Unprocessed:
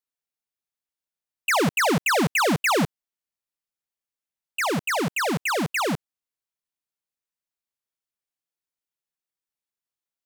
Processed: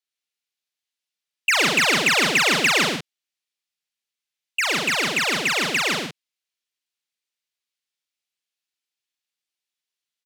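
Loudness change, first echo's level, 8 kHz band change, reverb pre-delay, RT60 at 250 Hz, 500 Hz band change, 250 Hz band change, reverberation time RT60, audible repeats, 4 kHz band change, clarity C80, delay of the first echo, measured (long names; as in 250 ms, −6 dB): +4.5 dB, −5.0 dB, +5.0 dB, no reverb audible, no reverb audible, −2.0 dB, −3.5 dB, no reverb audible, 3, +9.5 dB, no reverb audible, 41 ms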